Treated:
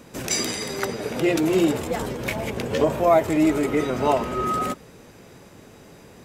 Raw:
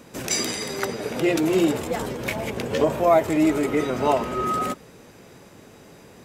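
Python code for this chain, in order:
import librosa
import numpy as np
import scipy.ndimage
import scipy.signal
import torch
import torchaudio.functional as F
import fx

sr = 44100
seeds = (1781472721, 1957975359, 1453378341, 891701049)

y = fx.low_shelf(x, sr, hz=88.0, db=5.0)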